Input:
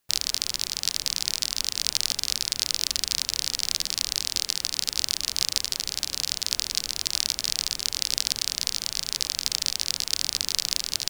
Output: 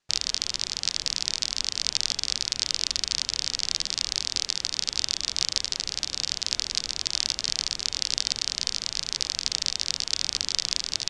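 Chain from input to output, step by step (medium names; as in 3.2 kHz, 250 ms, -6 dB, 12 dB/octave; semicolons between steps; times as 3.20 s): low-pass 7.1 kHz 24 dB/octave; de-hum 281.9 Hz, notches 13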